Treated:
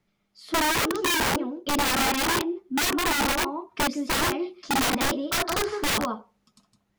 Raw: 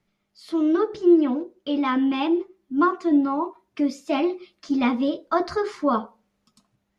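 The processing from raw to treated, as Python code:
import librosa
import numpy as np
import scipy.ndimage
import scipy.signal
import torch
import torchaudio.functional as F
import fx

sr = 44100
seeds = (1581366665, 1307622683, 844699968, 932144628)

y = x + 10.0 ** (-8.0 / 20.0) * np.pad(x, (int(161 * sr / 1000.0), 0))[:len(x)]
y = (np.mod(10.0 ** (19.0 / 20.0) * y + 1.0, 2.0) - 1.0) / 10.0 ** (19.0 / 20.0)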